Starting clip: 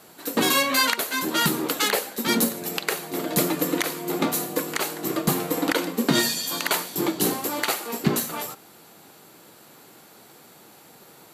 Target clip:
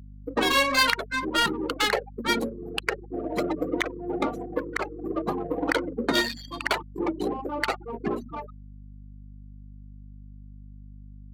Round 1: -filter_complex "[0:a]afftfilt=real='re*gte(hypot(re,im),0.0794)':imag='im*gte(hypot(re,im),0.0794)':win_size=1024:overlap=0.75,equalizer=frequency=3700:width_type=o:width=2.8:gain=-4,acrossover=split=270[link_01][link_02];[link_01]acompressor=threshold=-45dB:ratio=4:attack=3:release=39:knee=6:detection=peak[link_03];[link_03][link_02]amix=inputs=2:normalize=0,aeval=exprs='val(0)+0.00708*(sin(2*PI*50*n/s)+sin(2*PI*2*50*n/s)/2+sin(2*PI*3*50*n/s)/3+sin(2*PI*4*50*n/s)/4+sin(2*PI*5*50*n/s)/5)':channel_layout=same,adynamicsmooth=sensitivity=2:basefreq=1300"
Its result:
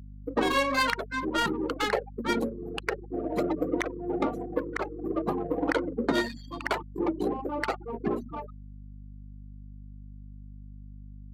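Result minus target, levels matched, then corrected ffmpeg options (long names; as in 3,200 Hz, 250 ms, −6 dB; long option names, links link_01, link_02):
4,000 Hz band −5.5 dB
-filter_complex "[0:a]afftfilt=real='re*gte(hypot(re,im),0.0794)':imag='im*gte(hypot(re,im),0.0794)':win_size=1024:overlap=0.75,equalizer=frequency=3700:width_type=o:width=2.8:gain=2,acrossover=split=270[link_01][link_02];[link_01]acompressor=threshold=-45dB:ratio=4:attack=3:release=39:knee=6:detection=peak[link_03];[link_03][link_02]amix=inputs=2:normalize=0,aeval=exprs='val(0)+0.00708*(sin(2*PI*50*n/s)+sin(2*PI*2*50*n/s)/2+sin(2*PI*3*50*n/s)/3+sin(2*PI*4*50*n/s)/4+sin(2*PI*5*50*n/s)/5)':channel_layout=same,adynamicsmooth=sensitivity=2:basefreq=1300"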